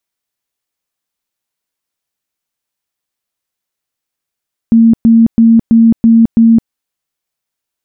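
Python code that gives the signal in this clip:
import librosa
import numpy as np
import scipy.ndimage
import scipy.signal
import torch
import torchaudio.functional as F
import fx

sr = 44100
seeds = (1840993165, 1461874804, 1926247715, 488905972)

y = fx.tone_burst(sr, hz=228.0, cycles=49, every_s=0.33, bursts=6, level_db=-2.5)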